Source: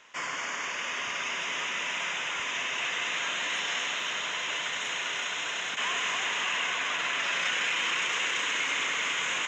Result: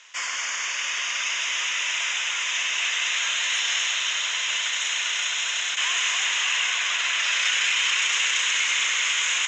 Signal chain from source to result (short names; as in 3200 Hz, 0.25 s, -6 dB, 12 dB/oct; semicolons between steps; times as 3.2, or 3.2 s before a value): weighting filter ITU-R 468; gain -1 dB